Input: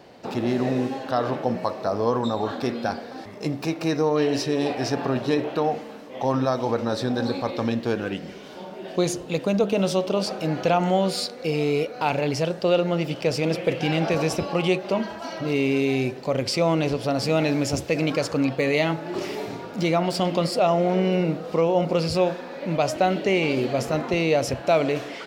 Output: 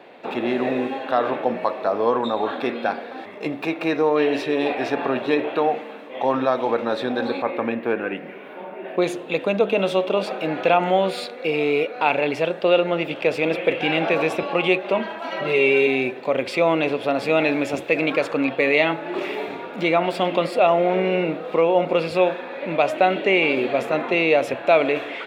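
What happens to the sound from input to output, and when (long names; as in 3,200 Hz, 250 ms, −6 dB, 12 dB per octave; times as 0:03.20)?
0:07.42–0:09.02: flat-topped bell 5,200 Hz −12.5 dB
0:15.31–0:15.87: comb filter 5.2 ms, depth 94%
whole clip: high-pass filter 290 Hz 12 dB per octave; high shelf with overshoot 4,000 Hz −9.5 dB, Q 3; notch filter 3,000 Hz, Q 6.7; level +3.5 dB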